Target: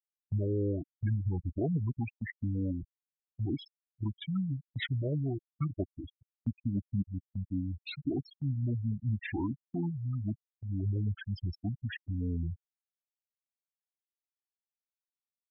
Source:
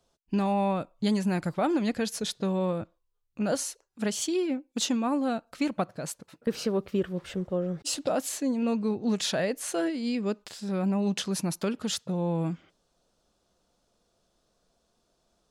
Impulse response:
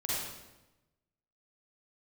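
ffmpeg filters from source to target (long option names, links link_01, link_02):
-af "asetrate=22696,aresample=44100,atempo=1.94306,afftfilt=real='re*gte(hypot(re,im),0.0891)':imag='im*gte(hypot(re,im),0.0891)':win_size=1024:overlap=0.75,agate=range=-10dB:threshold=-45dB:ratio=16:detection=peak,volume=-4.5dB"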